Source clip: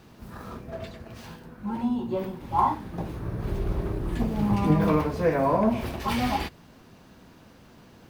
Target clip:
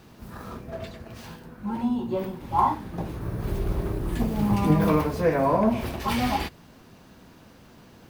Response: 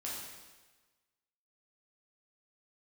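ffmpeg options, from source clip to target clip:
-af "asetnsamples=n=441:p=0,asendcmd='3.21 highshelf g 9.5;5.21 highshelf g 3',highshelf=f=7900:g=3,volume=1.12"

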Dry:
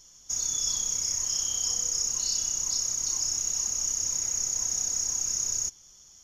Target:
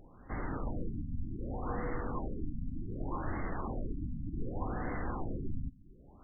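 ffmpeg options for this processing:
-af "equalizer=f=280:t=o:w=0.7:g=6,afftfilt=real='re*lt(b*sr/1024,270*pow(2200/270,0.5+0.5*sin(2*PI*0.66*pts/sr)))':imag='im*lt(b*sr/1024,270*pow(2200/270,0.5+0.5*sin(2*PI*0.66*pts/sr)))':win_size=1024:overlap=0.75,volume=3.98"

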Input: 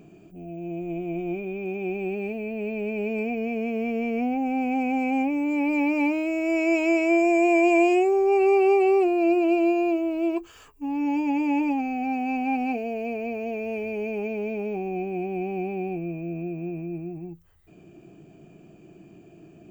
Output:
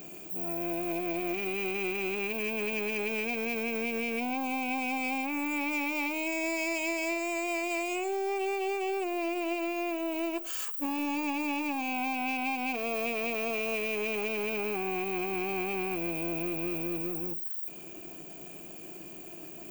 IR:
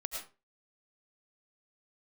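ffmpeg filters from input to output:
-filter_complex "[0:a]aeval=exprs='if(lt(val(0),0),0.447*val(0),val(0))':c=same,aemphasis=mode=production:type=riaa,acompressor=threshold=0.0158:ratio=12,asplit=2[s0][s1];[1:a]atrim=start_sample=2205[s2];[s1][s2]afir=irnorm=-1:irlink=0,volume=0.158[s3];[s0][s3]amix=inputs=2:normalize=0,volume=2.24"

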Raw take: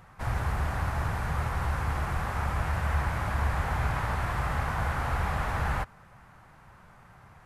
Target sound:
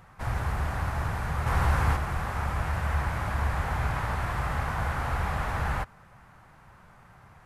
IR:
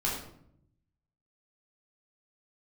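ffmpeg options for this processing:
-filter_complex "[0:a]asplit=3[s0][s1][s2];[s0]afade=t=out:st=1.46:d=0.02[s3];[s1]acontrast=38,afade=t=in:st=1.46:d=0.02,afade=t=out:st=1.95:d=0.02[s4];[s2]afade=t=in:st=1.95:d=0.02[s5];[s3][s4][s5]amix=inputs=3:normalize=0"

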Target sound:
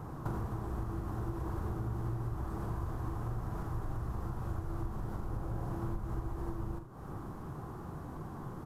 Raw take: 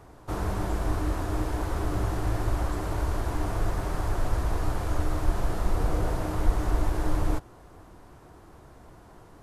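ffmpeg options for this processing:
-filter_complex "[0:a]equalizer=f=125:t=o:w=1:g=10,equalizer=f=250:t=o:w=1:g=6,equalizer=f=500:t=o:w=1:g=-3,equalizer=f=1000:t=o:w=1:g=6,equalizer=f=2000:t=o:w=1:g=-8,equalizer=f=4000:t=o:w=1:g=-4,equalizer=f=8000:t=o:w=1:g=-4,acompressor=threshold=0.0158:ratio=20,asplit=2[s0][s1];[s1]aecho=0:1:48|84:0.355|0.266[s2];[s0][s2]amix=inputs=2:normalize=0,asetrate=48000,aresample=44100,volume=1.26"

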